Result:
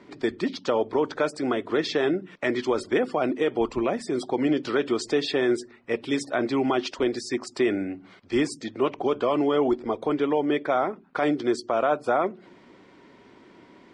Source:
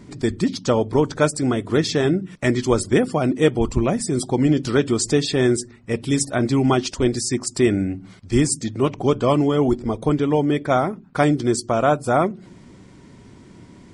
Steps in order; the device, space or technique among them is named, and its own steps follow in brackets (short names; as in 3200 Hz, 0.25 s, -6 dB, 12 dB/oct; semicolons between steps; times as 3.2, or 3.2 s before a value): DJ mixer with the lows and highs turned down (three-band isolator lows -20 dB, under 290 Hz, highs -21 dB, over 4300 Hz; limiter -13.5 dBFS, peak gain reduction 8.5 dB)